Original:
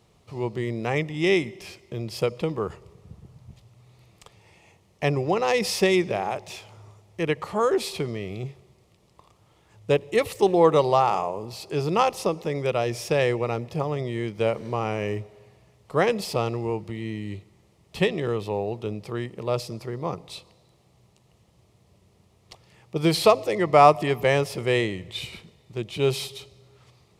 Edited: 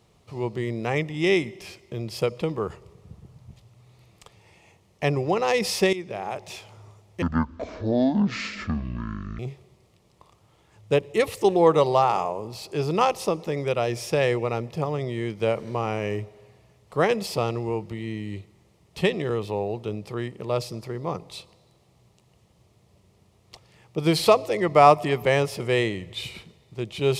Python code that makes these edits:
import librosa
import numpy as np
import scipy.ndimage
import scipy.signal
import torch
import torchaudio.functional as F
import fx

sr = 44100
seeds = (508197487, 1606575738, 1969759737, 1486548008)

y = fx.edit(x, sr, fx.fade_in_from(start_s=5.93, length_s=0.57, floor_db=-15.5),
    fx.speed_span(start_s=7.22, length_s=1.15, speed=0.53), tone=tone)